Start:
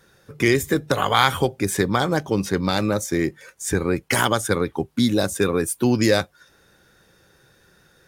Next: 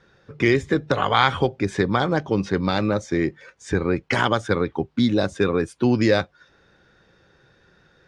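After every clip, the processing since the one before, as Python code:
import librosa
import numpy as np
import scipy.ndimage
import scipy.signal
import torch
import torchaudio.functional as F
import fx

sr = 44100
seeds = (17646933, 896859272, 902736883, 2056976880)

y = scipy.signal.sosfilt(scipy.signal.bessel(4, 3800.0, 'lowpass', norm='mag', fs=sr, output='sos'), x)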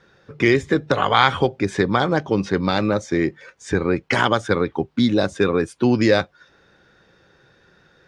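y = fx.low_shelf(x, sr, hz=100.0, db=-5.5)
y = y * 10.0 ** (2.5 / 20.0)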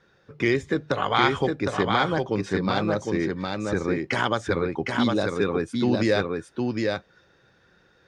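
y = x + 10.0 ** (-3.5 / 20.0) * np.pad(x, (int(759 * sr / 1000.0), 0))[:len(x)]
y = y * 10.0 ** (-6.0 / 20.0)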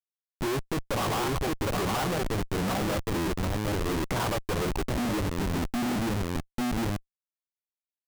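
y = fx.filter_sweep_lowpass(x, sr, from_hz=1100.0, to_hz=270.0, start_s=4.55, end_s=5.4, q=1.7)
y = fx.schmitt(y, sr, flips_db=-28.5)
y = y * 10.0 ** (-3.5 / 20.0)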